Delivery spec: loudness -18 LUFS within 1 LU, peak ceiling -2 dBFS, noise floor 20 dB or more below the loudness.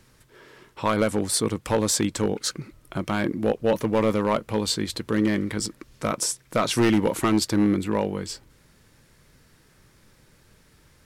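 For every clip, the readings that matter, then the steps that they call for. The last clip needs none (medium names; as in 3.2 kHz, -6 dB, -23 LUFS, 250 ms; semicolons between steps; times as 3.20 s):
clipped samples 0.7%; clipping level -13.5 dBFS; loudness -24.5 LUFS; peak level -13.5 dBFS; loudness target -18.0 LUFS
-> clip repair -13.5 dBFS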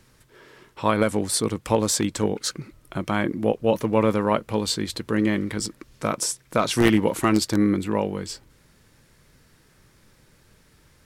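clipped samples 0.0%; loudness -23.5 LUFS; peak level -4.5 dBFS; loudness target -18.0 LUFS
-> trim +5.5 dB; peak limiter -2 dBFS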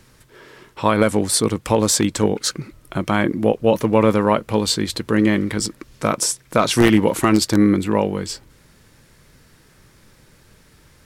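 loudness -18.5 LUFS; peak level -2.0 dBFS; noise floor -53 dBFS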